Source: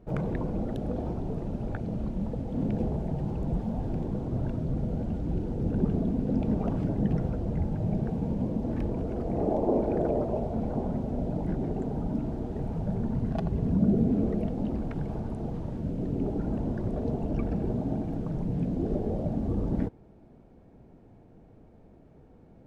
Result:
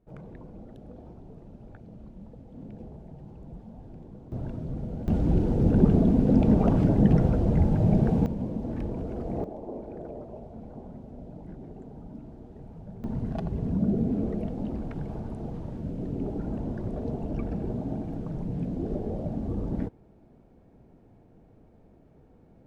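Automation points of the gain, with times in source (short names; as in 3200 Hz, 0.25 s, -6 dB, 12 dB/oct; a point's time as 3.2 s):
-14 dB
from 4.32 s -4 dB
from 5.08 s +7 dB
from 8.26 s -2 dB
from 9.44 s -12.5 dB
from 13.04 s -2 dB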